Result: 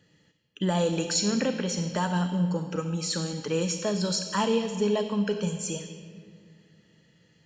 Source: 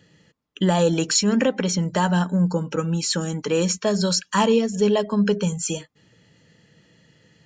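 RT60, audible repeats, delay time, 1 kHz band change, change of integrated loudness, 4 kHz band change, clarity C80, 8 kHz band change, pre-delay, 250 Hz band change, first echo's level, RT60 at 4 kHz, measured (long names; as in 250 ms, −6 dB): 2.2 s, no echo audible, no echo audible, −6.5 dB, −6.0 dB, −5.0 dB, 9.0 dB, −6.0 dB, 29 ms, −6.5 dB, no echo audible, 1.2 s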